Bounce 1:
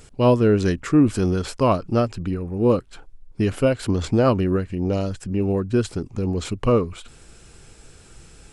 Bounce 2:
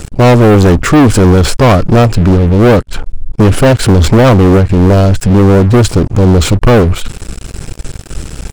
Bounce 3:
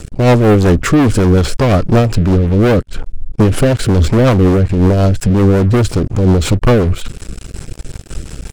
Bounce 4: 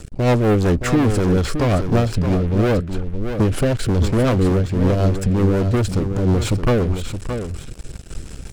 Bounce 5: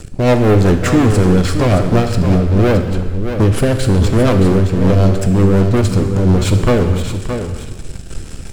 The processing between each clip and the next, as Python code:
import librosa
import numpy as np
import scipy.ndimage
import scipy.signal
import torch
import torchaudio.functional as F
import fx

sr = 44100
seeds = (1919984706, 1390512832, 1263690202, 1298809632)

y1 = fx.low_shelf(x, sr, hz=230.0, db=9.5)
y1 = fx.leveller(y1, sr, passes=5)
y2 = fx.rotary(y1, sr, hz=5.5)
y2 = y2 * librosa.db_to_amplitude(-2.5)
y3 = y2 + 10.0 ** (-8.5 / 20.0) * np.pad(y2, (int(620 * sr / 1000.0), 0))[:len(y2)]
y3 = y3 * librosa.db_to_amplitude(-7.0)
y4 = fx.rev_gated(y3, sr, seeds[0], gate_ms=480, shape='falling', drr_db=6.5)
y4 = y4 * librosa.db_to_amplitude(4.0)